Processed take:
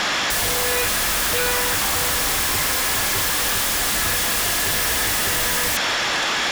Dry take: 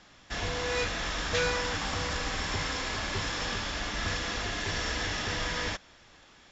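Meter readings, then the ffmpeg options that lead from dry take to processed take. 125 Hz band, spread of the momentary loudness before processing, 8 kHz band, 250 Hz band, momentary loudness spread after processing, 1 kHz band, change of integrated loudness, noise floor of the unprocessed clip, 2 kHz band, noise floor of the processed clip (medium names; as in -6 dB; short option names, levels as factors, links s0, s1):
+3.5 dB, 4 LU, no reading, +6.5 dB, 1 LU, +10.5 dB, +13.0 dB, -57 dBFS, +11.0 dB, -22 dBFS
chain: -filter_complex "[0:a]asplit=2[s0][s1];[s1]highpass=f=720:p=1,volume=35.5,asoftclip=type=tanh:threshold=0.178[s2];[s0][s2]amix=inputs=2:normalize=0,lowpass=f=6200:p=1,volume=0.501,aeval=exprs='0.178*sin(PI/2*4.47*val(0)/0.178)':c=same,volume=0.794"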